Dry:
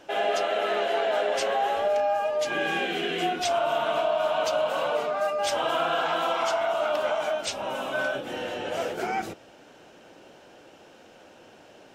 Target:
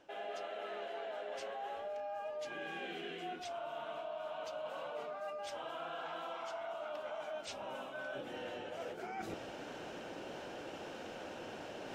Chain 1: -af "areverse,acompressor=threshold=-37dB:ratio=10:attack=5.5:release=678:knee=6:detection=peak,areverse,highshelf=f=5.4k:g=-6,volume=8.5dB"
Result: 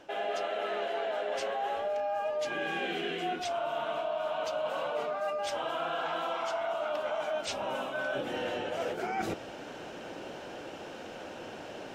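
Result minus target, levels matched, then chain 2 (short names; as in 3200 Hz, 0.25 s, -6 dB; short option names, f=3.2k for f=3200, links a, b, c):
compressor: peak gain reduction -10 dB
-af "areverse,acompressor=threshold=-48dB:ratio=10:attack=5.5:release=678:knee=6:detection=peak,areverse,highshelf=f=5.4k:g=-6,volume=8.5dB"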